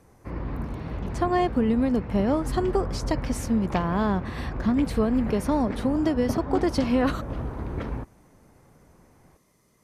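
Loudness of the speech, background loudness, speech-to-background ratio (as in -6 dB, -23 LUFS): -25.5 LUFS, -33.5 LUFS, 8.0 dB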